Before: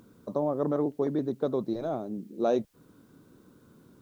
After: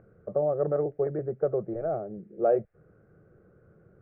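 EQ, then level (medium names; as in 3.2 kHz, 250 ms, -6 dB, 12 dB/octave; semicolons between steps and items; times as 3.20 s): low-pass 1.7 kHz 12 dB/octave; distance through air 450 m; static phaser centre 980 Hz, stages 6; +5.5 dB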